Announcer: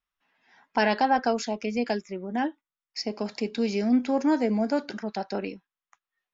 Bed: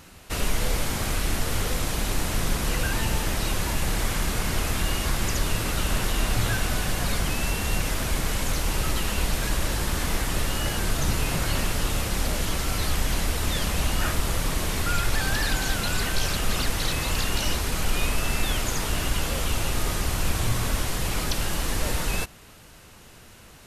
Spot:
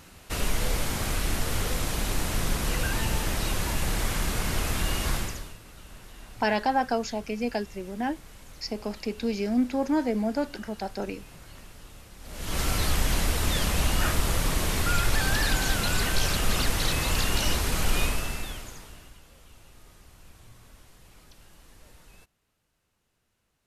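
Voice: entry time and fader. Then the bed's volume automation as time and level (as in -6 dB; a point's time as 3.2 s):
5.65 s, -2.0 dB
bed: 5.16 s -2 dB
5.59 s -22 dB
12.19 s -22 dB
12.59 s 0 dB
18.01 s 0 dB
19.22 s -27 dB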